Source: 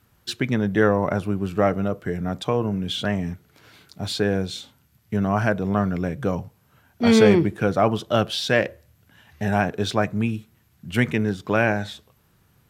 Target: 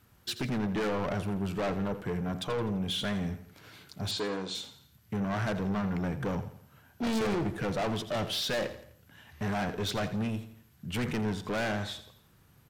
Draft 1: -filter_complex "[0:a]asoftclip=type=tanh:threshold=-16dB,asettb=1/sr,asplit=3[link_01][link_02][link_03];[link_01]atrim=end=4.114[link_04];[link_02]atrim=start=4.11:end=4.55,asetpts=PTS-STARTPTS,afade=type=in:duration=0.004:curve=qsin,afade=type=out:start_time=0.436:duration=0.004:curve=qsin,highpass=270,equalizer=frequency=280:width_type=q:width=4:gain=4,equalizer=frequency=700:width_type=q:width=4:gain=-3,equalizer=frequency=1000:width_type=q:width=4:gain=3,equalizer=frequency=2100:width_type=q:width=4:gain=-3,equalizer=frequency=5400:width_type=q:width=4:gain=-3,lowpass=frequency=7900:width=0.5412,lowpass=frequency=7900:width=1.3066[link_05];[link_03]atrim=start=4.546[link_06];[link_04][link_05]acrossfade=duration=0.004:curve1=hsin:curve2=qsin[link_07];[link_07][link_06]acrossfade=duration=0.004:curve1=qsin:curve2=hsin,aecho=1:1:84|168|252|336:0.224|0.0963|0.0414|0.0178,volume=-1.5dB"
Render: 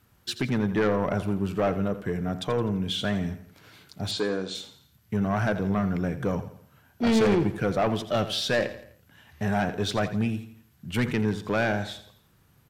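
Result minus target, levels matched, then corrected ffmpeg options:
soft clipping: distortion −6 dB
-filter_complex "[0:a]asoftclip=type=tanh:threshold=-26.5dB,asettb=1/sr,asplit=3[link_01][link_02][link_03];[link_01]atrim=end=4.114[link_04];[link_02]atrim=start=4.11:end=4.55,asetpts=PTS-STARTPTS,afade=type=in:duration=0.004:curve=qsin,afade=type=out:start_time=0.436:duration=0.004:curve=qsin,highpass=270,equalizer=frequency=280:width_type=q:width=4:gain=4,equalizer=frequency=700:width_type=q:width=4:gain=-3,equalizer=frequency=1000:width_type=q:width=4:gain=3,equalizer=frequency=2100:width_type=q:width=4:gain=-3,equalizer=frequency=5400:width_type=q:width=4:gain=-3,lowpass=frequency=7900:width=0.5412,lowpass=frequency=7900:width=1.3066[link_05];[link_03]atrim=start=4.546[link_06];[link_04][link_05]acrossfade=duration=0.004:curve1=hsin:curve2=qsin[link_07];[link_07][link_06]acrossfade=duration=0.004:curve1=qsin:curve2=hsin,aecho=1:1:84|168|252|336:0.224|0.0963|0.0414|0.0178,volume=-1.5dB"

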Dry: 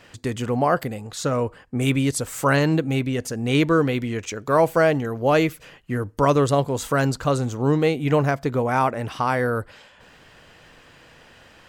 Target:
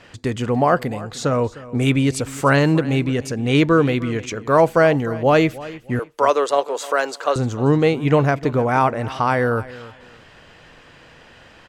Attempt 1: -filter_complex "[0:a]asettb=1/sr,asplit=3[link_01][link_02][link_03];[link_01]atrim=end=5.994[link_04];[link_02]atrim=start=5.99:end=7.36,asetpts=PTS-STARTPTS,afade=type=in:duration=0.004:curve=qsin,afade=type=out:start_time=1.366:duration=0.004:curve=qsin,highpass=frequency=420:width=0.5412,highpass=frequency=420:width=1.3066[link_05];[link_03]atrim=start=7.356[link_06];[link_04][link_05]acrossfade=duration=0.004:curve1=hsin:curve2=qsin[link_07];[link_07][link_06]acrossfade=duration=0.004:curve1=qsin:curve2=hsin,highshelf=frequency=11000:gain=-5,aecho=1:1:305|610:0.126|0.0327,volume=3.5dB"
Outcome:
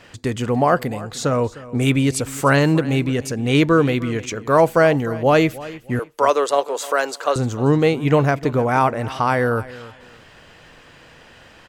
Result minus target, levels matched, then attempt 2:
8,000 Hz band +3.0 dB
-filter_complex "[0:a]asettb=1/sr,asplit=3[link_01][link_02][link_03];[link_01]atrim=end=5.994[link_04];[link_02]atrim=start=5.99:end=7.36,asetpts=PTS-STARTPTS,afade=type=in:duration=0.004:curve=qsin,afade=type=out:start_time=1.366:duration=0.004:curve=qsin,highpass=frequency=420:width=0.5412,highpass=frequency=420:width=1.3066[link_05];[link_03]atrim=start=7.356[link_06];[link_04][link_05]acrossfade=duration=0.004:curve1=hsin:curve2=qsin[link_07];[link_07][link_06]acrossfade=duration=0.004:curve1=qsin:curve2=hsin,highshelf=frequency=11000:gain=-16,aecho=1:1:305|610:0.126|0.0327,volume=3.5dB"

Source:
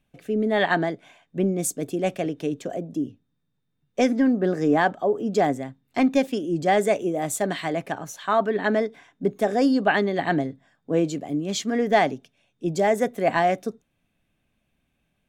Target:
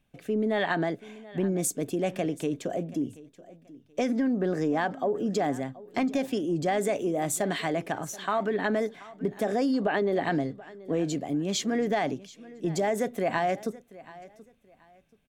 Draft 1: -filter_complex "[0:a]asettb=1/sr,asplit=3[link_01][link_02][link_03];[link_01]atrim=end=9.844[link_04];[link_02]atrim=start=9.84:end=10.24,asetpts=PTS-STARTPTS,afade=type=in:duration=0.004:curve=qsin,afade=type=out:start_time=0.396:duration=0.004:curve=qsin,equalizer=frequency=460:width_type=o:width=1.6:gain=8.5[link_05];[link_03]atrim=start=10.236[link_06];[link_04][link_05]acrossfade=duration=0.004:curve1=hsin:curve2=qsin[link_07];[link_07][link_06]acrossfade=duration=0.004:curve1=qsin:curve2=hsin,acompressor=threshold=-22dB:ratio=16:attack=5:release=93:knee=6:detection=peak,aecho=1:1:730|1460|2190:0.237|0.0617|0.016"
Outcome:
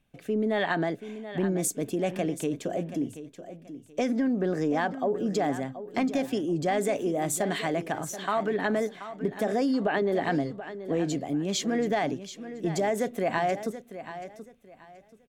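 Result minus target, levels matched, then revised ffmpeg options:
echo-to-direct +7 dB
-filter_complex "[0:a]asettb=1/sr,asplit=3[link_01][link_02][link_03];[link_01]atrim=end=9.844[link_04];[link_02]atrim=start=9.84:end=10.24,asetpts=PTS-STARTPTS,afade=type=in:duration=0.004:curve=qsin,afade=type=out:start_time=0.396:duration=0.004:curve=qsin,equalizer=frequency=460:width_type=o:width=1.6:gain=8.5[link_05];[link_03]atrim=start=10.236[link_06];[link_04][link_05]acrossfade=duration=0.004:curve1=hsin:curve2=qsin[link_07];[link_07][link_06]acrossfade=duration=0.004:curve1=qsin:curve2=hsin,acompressor=threshold=-22dB:ratio=16:attack=5:release=93:knee=6:detection=peak,aecho=1:1:730|1460:0.106|0.0275"

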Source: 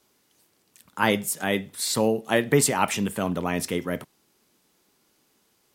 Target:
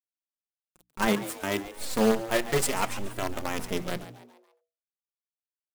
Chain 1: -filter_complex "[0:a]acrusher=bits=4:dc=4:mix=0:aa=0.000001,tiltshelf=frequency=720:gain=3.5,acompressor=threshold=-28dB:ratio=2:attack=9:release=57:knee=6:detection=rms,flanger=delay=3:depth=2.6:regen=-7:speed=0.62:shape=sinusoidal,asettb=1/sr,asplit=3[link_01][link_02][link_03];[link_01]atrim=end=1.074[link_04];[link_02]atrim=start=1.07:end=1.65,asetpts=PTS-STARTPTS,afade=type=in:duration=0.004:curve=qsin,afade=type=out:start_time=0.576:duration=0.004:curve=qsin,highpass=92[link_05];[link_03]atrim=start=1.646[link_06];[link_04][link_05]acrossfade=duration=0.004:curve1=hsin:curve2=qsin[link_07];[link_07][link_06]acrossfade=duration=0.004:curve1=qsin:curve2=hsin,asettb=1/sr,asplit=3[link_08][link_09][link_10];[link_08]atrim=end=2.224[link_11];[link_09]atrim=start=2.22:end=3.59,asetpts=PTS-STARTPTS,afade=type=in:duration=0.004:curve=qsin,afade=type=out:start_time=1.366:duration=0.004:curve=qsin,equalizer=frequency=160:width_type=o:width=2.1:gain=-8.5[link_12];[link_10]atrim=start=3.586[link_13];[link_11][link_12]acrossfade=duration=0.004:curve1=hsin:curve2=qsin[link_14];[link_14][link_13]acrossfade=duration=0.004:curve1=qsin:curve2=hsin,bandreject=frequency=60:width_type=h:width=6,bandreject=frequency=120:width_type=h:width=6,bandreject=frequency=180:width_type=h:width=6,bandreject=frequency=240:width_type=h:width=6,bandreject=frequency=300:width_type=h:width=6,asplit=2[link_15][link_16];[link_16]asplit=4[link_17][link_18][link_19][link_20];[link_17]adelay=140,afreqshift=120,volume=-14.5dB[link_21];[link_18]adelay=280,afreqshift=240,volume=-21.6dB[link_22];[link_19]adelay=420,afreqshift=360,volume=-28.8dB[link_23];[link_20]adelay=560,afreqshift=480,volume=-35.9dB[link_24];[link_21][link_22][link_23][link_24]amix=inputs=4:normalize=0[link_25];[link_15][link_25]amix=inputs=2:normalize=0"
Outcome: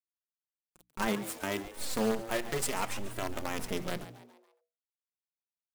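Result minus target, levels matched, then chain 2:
downward compressor: peak gain reduction +9 dB
-filter_complex "[0:a]acrusher=bits=4:dc=4:mix=0:aa=0.000001,tiltshelf=frequency=720:gain=3.5,flanger=delay=3:depth=2.6:regen=-7:speed=0.62:shape=sinusoidal,asettb=1/sr,asplit=3[link_01][link_02][link_03];[link_01]atrim=end=1.074[link_04];[link_02]atrim=start=1.07:end=1.65,asetpts=PTS-STARTPTS,afade=type=in:duration=0.004:curve=qsin,afade=type=out:start_time=0.576:duration=0.004:curve=qsin,highpass=92[link_05];[link_03]atrim=start=1.646[link_06];[link_04][link_05]acrossfade=duration=0.004:curve1=hsin:curve2=qsin[link_07];[link_07][link_06]acrossfade=duration=0.004:curve1=qsin:curve2=hsin,asettb=1/sr,asplit=3[link_08][link_09][link_10];[link_08]atrim=end=2.224[link_11];[link_09]atrim=start=2.22:end=3.59,asetpts=PTS-STARTPTS,afade=type=in:duration=0.004:curve=qsin,afade=type=out:start_time=1.366:duration=0.004:curve=qsin,equalizer=frequency=160:width_type=o:width=2.1:gain=-8.5[link_12];[link_10]atrim=start=3.586[link_13];[link_11][link_12]acrossfade=duration=0.004:curve1=hsin:curve2=qsin[link_14];[link_14][link_13]acrossfade=duration=0.004:curve1=qsin:curve2=hsin,bandreject=frequency=60:width_type=h:width=6,bandreject=frequency=120:width_type=h:width=6,bandreject=frequency=180:width_type=h:width=6,bandreject=frequency=240:width_type=h:width=6,bandreject=frequency=300:width_type=h:width=6,asplit=2[link_15][link_16];[link_16]asplit=4[link_17][link_18][link_19][link_20];[link_17]adelay=140,afreqshift=120,volume=-14.5dB[link_21];[link_18]adelay=280,afreqshift=240,volume=-21.6dB[link_22];[link_19]adelay=420,afreqshift=360,volume=-28.8dB[link_23];[link_20]adelay=560,afreqshift=480,volume=-35.9dB[link_24];[link_21][link_22][link_23][link_24]amix=inputs=4:normalize=0[link_25];[link_15][link_25]amix=inputs=2:normalize=0"

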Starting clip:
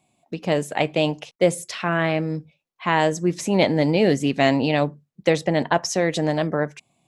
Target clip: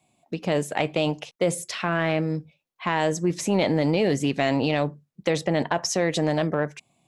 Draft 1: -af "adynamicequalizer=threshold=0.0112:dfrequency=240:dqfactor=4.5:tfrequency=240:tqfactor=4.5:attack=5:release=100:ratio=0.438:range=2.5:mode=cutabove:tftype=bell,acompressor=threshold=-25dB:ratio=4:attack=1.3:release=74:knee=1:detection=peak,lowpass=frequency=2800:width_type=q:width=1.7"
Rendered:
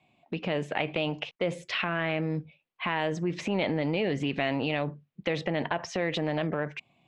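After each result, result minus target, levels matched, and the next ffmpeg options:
downward compressor: peak gain reduction +7 dB; 2,000 Hz band +3.0 dB
-af "adynamicequalizer=threshold=0.0112:dfrequency=240:dqfactor=4.5:tfrequency=240:tqfactor=4.5:attack=5:release=100:ratio=0.438:range=2.5:mode=cutabove:tftype=bell,acompressor=threshold=-16dB:ratio=4:attack=1.3:release=74:knee=1:detection=peak,lowpass=frequency=2800:width_type=q:width=1.7"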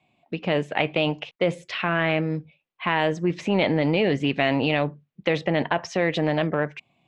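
2,000 Hz band +3.0 dB
-af "adynamicequalizer=threshold=0.0112:dfrequency=240:dqfactor=4.5:tfrequency=240:tqfactor=4.5:attack=5:release=100:ratio=0.438:range=2.5:mode=cutabove:tftype=bell,acompressor=threshold=-16dB:ratio=4:attack=1.3:release=74:knee=1:detection=peak"

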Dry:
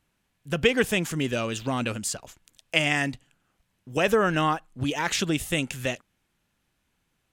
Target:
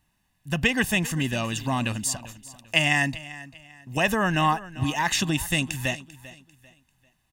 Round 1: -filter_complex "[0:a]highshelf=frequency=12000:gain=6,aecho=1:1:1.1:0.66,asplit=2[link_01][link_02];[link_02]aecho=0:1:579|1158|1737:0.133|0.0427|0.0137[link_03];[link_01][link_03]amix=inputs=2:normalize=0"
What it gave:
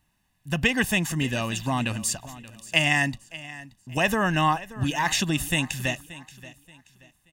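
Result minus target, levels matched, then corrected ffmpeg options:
echo 185 ms late
-filter_complex "[0:a]highshelf=frequency=12000:gain=6,aecho=1:1:1.1:0.66,asplit=2[link_01][link_02];[link_02]aecho=0:1:394|788|1182:0.133|0.0427|0.0137[link_03];[link_01][link_03]amix=inputs=2:normalize=0"

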